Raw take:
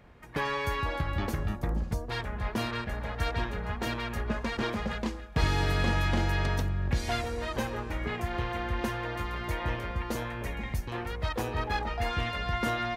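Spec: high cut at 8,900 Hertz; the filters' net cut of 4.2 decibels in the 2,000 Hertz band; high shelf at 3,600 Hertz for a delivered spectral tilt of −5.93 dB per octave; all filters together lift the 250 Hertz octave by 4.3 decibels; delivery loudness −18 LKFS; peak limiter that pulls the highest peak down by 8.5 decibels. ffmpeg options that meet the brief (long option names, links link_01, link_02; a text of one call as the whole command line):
ffmpeg -i in.wav -af "lowpass=8900,equalizer=frequency=250:width_type=o:gain=5.5,equalizer=frequency=2000:width_type=o:gain=-3,highshelf=frequency=3600:gain=-9,volume=15.5dB,alimiter=limit=-7dB:level=0:latency=1" out.wav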